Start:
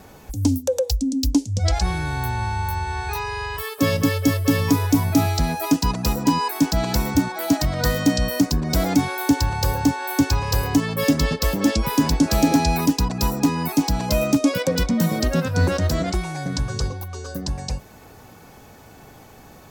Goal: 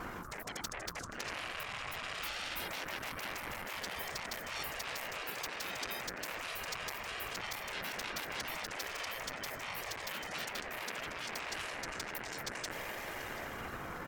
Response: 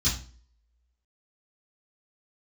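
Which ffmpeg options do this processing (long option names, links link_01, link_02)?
-filter_complex "[0:a]dynaudnorm=framelen=150:gausssize=17:maxgain=11.5dB,atempo=1.4,areverse,acompressor=threshold=-21dB:ratio=10,areverse,highpass=42,lowshelf=frequency=430:gain=6,aecho=1:1:734:0.0668,afftfilt=real='hypot(re,im)*cos(2*PI*random(0))':imag='hypot(re,im)*sin(2*PI*random(1))':win_size=512:overlap=0.75,asoftclip=type=tanh:threshold=-33.5dB,acrossover=split=160 2000:gain=0.2 1 0.251[link_01][link_02][link_03];[link_01][link_02][link_03]amix=inputs=3:normalize=0,afftfilt=real='re*lt(hypot(re,im),0.0112)':imag='im*lt(hypot(re,im),0.0112)':win_size=1024:overlap=0.75,bandreject=frequency=50:width_type=h:width=6,bandreject=frequency=100:width_type=h:width=6,bandreject=frequency=150:width_type=h:width=6,bandreject=frequency=200:width_type=h:width=6,bandreject=frequency=250:width_type=h:width=6,bandreject=frequency=300:width_type=h:width=6,aeval=exprs='val(0)*sin(2*PI*610*n/s)':channel_layout=same,volume=16dB"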